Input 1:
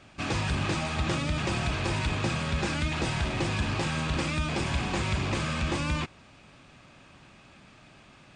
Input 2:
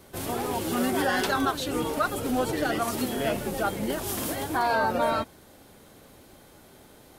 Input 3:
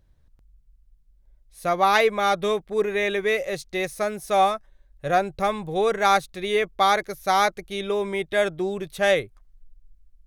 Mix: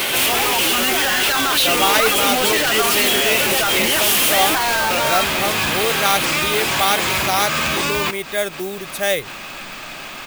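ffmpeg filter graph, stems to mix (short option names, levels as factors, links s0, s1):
-filter_complex "[0:a]adelay=2050,volume=0.562[s0];[1:a]equalizer=f=2700:t=o:w=1.1:g=14,volume=1.33[s1];[2:a]volume=0.891,asplit=2[s2][s3];[s3]apad=whole_len=458778[s4];[s0][s4]sidechaincompress=threshold=0.0251:ratio=8:attack=30:release=105[s5];[s5][s1]amix=inputs=2:normalize=0,asplit=2[s6][s7];[s7]highpass=f=720:p=1,volume=56.2,asoftclip=type=tanh:threshold=0.631[s8];[s6][s8]amix=inputs=2:normalize=0,lowpass=f=2300:p=1,volume=0.501,alimiter=limit=0.15:level=0:latency=1:release=32,volume=1[s9];[s2][s9]amix=inputs=2:normalize=0,acrusher=bits=6:mode=log:mix=0:aa=0.000001,aemphasis=mode=production:type=75kf"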